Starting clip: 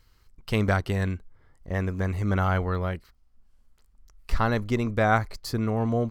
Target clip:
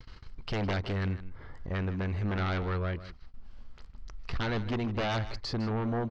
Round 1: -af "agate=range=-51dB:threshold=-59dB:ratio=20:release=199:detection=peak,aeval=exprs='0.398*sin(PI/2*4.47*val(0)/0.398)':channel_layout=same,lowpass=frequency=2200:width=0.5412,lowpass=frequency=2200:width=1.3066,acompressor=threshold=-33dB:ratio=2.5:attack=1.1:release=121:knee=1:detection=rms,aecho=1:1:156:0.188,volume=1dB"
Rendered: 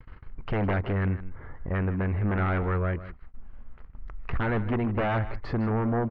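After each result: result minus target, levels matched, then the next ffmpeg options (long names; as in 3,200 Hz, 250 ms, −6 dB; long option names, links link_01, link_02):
4,000 Hz band −13.0 dB; downward compressor: peak gain reduction −4.5 dB
-af "agate=range=-51dB:threshold=-59dB:ratio=20:release=199:detection=peak,aeval=exprs='0.398*sin(PI/2*4.47*val(0)/0.398)':channel_layout=same,lowpass=frequency=4900:width=0.5412,lowpass=frequency=4900:width=1.3066,acompressor=threshold=-33dB:ratio=2.5:attack=1.1:release=121:knee=1:detection=rms,aecho=1:1:156:0.188,volume=1dB"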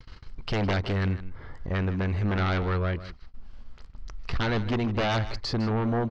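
downward compressor: peak gain reduction −5 dB
-af "agate=range=-51dB:threshold=-59dB:ratio=20:release=199:detection=peak,aeval=exprs='0.398*sin(PI/2*4.47*val(0)/0.398)':channel_layout=same,lowpass=frequency=4900:width=0.5412,lowpass=frequency=4900:width=1.3066,acompressor=threshold=-41dB:ratio=2.5:attack=1.1:release=121:knee=1:detection=rms,aecho=1:1:156:0.188,volume=1dB"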